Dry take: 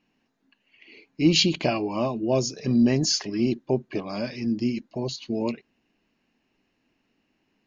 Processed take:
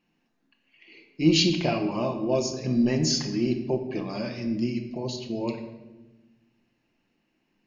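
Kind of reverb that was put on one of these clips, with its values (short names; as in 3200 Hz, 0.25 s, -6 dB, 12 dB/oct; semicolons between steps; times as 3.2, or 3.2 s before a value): shoebox room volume 570 m³, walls mixed, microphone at 0.84 m; gain -3 dB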